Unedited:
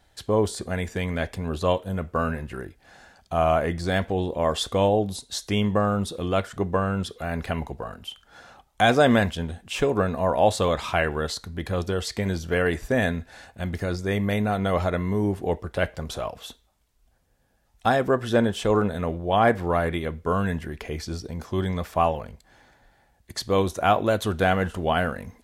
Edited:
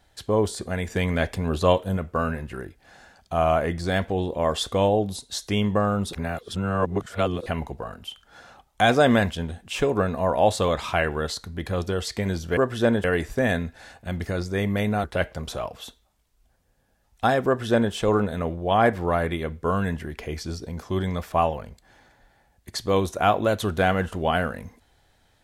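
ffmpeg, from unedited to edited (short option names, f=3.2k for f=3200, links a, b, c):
-filter_complex "[0:a]asplit=8[a][b][c][d][e][f][g][h];[a]atrim=end=0.902[i];[b]atrim=start=0.898:end=1.972,asetpts=PTS-STARTPTS,volume=3.5dB[j];[c]atrim=start=1.968:end=6.132[k];[d]atrim=start=6.128:end=7.462,asetpts=PTS-STARTPTS,areverse[l];[e]atrim=start=7.458:end=12.572[m];[f]atrim=start=18.078:end=18.552[n];[g]atrim=start=12.568:end=14.572[o];[h]atrim=start=15.658[p];[i][j]acrossfade=d=0.004:c1=hsin:c2=hsin[q];[q][k]acrossfade=d=0.004:c1=hsin:c2=hsin[r];[r][l]acrossfade=d=0.004:c1=hsin:c2=hsin[s];[s][m]acrossfade=d=0.004:c1=hsin:c2=hsin[t];[t][n]acrossfade=d=0.004:c1=hsin:c2=hsin[u];[u][o]acrossfade=d=0.004:c1=hsin:c2=hsin[v];[v][p]acrossfade=d=0.004:c1=hsin:c2=hsin"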